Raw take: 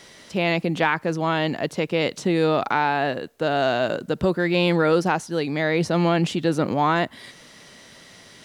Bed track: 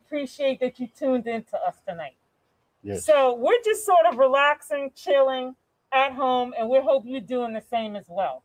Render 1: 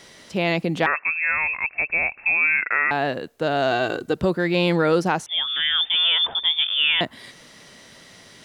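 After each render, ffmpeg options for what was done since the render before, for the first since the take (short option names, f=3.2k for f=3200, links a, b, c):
-filter_complex "[0:a]asettb=1/sr,asplit=3[a][b][c];[a]atrim=end=0.864[d];[b]atrim=start=0.86:end=2.91,asetpts=PTS-STARTPTS,afade=t=in:d=0.004:c=qsin,afade=t=out:st=2.046:d=0.004:c=qsin,lowpass=f=2.4k:t=q:w=0.5098,lowpass=f=2.4k:t=q:w=0.6013,lowpass=f=2.4k:t=q:w=0.9,lowpass=f=2.4k:t=q:w=2.563,afreqshift=-2800[e];[c]atrim=start=2.906[f];[d][e]acrossfade=d=0.004:c1=hsin:c2=qsin[g];[g][f]acrossfade=d=0.004:c1=qsin:c2=hsin,asettb=1/sr,asplit=3[h][i][j];[h]atrim=end=3.714[k];[i]atrim=start=3.71:end=4.17,asetpts=PTS-STARTPTS,afade=t=in:d=0.004:c=qsin,afade=t=out:st=0.456:d=0.004:c=qsin,aecho=1:1:2.6:0.65,atrim=end_sample=20286[l];[j]atrim=start=4.166[m];[k][l]acrossfade=d=0.004:c1=hsin:c2=qsin[n];[n][m]acrossfade=d=0.004:c1=qsin:c2=hsin,asettb=1/sr,asplit=3[o][p][q];[o]atrim=end=5.264[r];[p]atrim=start=5.26:end=7.01,asetpts=PTS-STARTPTS,afade=t=in:d=0.004:c=qsin,afade=t=out:st=1.746:d=0.004:c=qsin,lowpass=f=3.1k:t=q:w=0.5098,lowpass=f=3.1k:t=q:w=0.6013,lowpass=f=3.1k:t=q:w=0.9,lowpass=f=3.1k:t=q:w=2.563,afreqshift=-3700[s];[q]atrim=start=7.006[t];[r][s]acrossfade=d=0.004:c1=hsin:c2=qsin[u];[u][t]acrossfade=d=0.004:c1=qsin:c2=hsin"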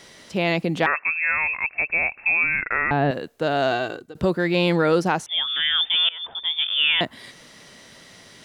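-filter_complex "[0:a]asettb=1/sr,asplit=3[a][b][c];[a]atrim=end=2.434[d];[b]atrim=start=2.43:end=3.11,asetpts=PTS-STARTPTS,afade=t=in:d=0.004:c=qsin,afade=t=out:st=0.676:d=0.004:c=qsin,aemphasis=mode=reproduction:type=riaa[e];[c]atrim=start=3.106[f];[d][e]acrossfade=d=0.004:c1=hsin:c2=qsin[g];[g][f]acrossfade=d=0.004:c1=qsin:c2=hsin,asplit=3[h][i][j];[h]atrim=end=4.15,asetpts=PTS-STARTPTS,afade=t=out:st=3.66:d=0.49:silence=0.0707946[k];[i]atrim=start=4.15:end=6.09,asetpts=PTS-STARTPTS,afade=t=in:d=0.004:c=hsin:silence=0.0707946,afade=t=out:st=1.936:d=0.004:c=hsin:silence=0.0794328[l];[j]atrim=start=6.09,asetpts=PTS-STARTPTS,afade=t=in:d=0.68:silence=0.0794328[m];[k][l][m]concat=n=3:v=0:a=1"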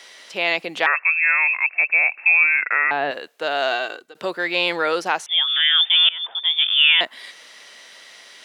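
-af "highpass=530,equalizer=f=2.7k:t=o:w=1.9:g=5.5"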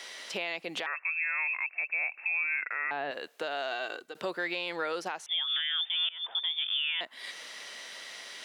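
-af "acompressor=threshold=-30dB:ratio=2,alimiter=limit=-22dB:level=0:latency=1:release=360"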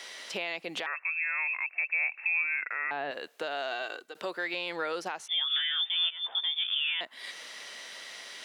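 -filter_complex "[0:a]asettb=1/sr,asplit=3[a][b][c];[a]atrim=end=1.784[d];[b]atrim=start=1.78:end=2.42,asetpts=PTS-STARTPTS,afade=t=in:d=0.004:c=qsin,afade=t=out:st=0.636:d=0.004:c=qsin,highpass=400,equalizer=f=670:t=q:w=4:g=-4,equalizer=f=1.9k:t=q:w=4:g=5,equalizer=f=3.5k:t=q:w=4:g=10,lowpass=f=6.8k:w=0.5412,lowpass=f=6.8k:w=1.3066[e];[c]atrim=start=2.416[f];[d][e]acrossfade=d=0.004:c1=hsin:c2=qsin[g];[g][f]acrossfade=d=0.004:c1=qsin:c2=hsin,asettb=1/sr,asplit=3[h][i][j];[h]atrim=end=3.824[k];[i]atrim=start=3.82:end=4.54,asetpts=PTS-STARTPTS,afade=t=in:d=0.004:c=qsin,afade=t=out:st=0.716:d=0.004:c=qsin,highpass=f=310:p=1[l];[j]atrim=start=4.536[m];[k][l]acrossfade=d=0.004:c1=hsin:c2=qsin[n];[n][m]acrossfade=d=0.004:c1=qsin:c2=hsin,asettb=1/sr,asplit=3[o][p][q];[o]atrim=end=5.184[r];[p]atrim=start=5.18:end=6.94,asetpts=PTS-STARTPTS,afade=t=in:d=0.004:c=qsin,afade=t=out:st=1.756:d=0.004:c=qsin,asplit=2[s][t];[t]adelay=15,volume=-6dB[u];[s][u]amix=inputs=2:normalize=0,atrim=end_sample=77616[v];[q]atrim=start=6.936[w];[r][v]acrossfade=d=0.004:c1=hsin:c2=qsin[x];[x][w]acrossfade=d=0.004:c1=qsin:c2=hsin"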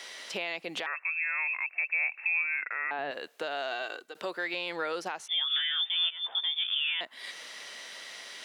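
-filter_complex "[0:a]asettb=1/sr,asplit=3[a][b][c];[a]atrim=end=2.394[d];[b]atrim=start=2.39:end=2.99,asetpts=PTS-STARTPTS,afade=t=in:d=0.004:c=qsin,afade=t=out:st=0.596:d=0.004:c=qsin,highpass=210,lowpass=3.8k[e];[c]atrim=start=2.986[f];[d][e]acrossfade=d=0.004:c1=hsin:c2=qsin[g];[g][f]acrossfade=d=0.004:c1=qsin:c2=hsin"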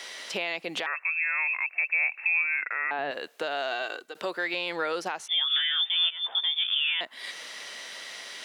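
-af "volume=3.5dB"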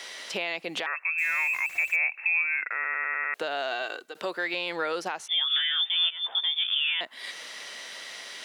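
-filter_complex "[0:a]asettb=1/sr,asplit=3[a][b][c];[a]atrim=end=1.184[d];[b]atrim=start=1.18:end=1.96,asetpts=PTS-STARTPTS,afade=t=in:d=0.004:c=qsin,afade=t=out:st=0.776:d=0.004:c=qsin,aeval=exprs='val(0)+0.5*0.0126*sgn(val(0))':c=same[e];[c]atrim=start=1.956[f];[d][e]acrossfade=d=0.004:c1=hsin:c2=qsin[g];[g][f]acrossfade=d=0.004:c1=qsin:c2=hsin,asplit=7[h][i][j][k][l][m][n];[h]atrim=end=2.842[o];[i]atrim=start=2.738:end=2.842[p];[j]atrim=start=2.738:end=2.842[q];[k]atrim=start=2.738:end=2.842[r];[l]atrim=start=2.738:end=2.842[s];[m]atrim=start=2.738:end=2.842[t];[n]atrim=start=3.338[u];[o][p]acrossfade=d=0.004:c1=hsin:c2=hsin[v];[v][q]acrossfade=d=0.004:c1=hsin:c2=hsin[w];[w][r]acrossfade=d=0.004:c1=hsin:c2=hsin[x];[x][s]acrossfade=d=0.004:c1=hsin:c2=hsin[y];[y][t]acrossfade=d=0.004:c1=hsin:c2=hsin[z];[z][u]acrossfade=d=0.004:c1=hsin:c2=hsin"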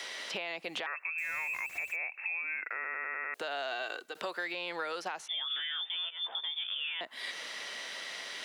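-filter_complex "[0:a]acrossover=split=1500[a][b];[b]alimiter=limit=-24dB:level=0:latency=1:release=216[c];[a][c]amix=inputs=2:normalize=0,acrossover=split=600|4700[d][e][f];[d]acompressor=threshold=-46dB:ratio=4[g];[e]acompressor=threshold=-35dB:ratio=4[h];[f]acompressor=threshold=-52dB:ratio=4[i];[g][h][i]amix=inputs=3:normalize=0"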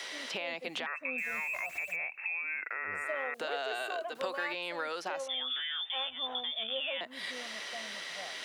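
-filter_complex "[1:a]volume=-21.5dB[a];[0:a][a]amix=inputs=2:normalize=0"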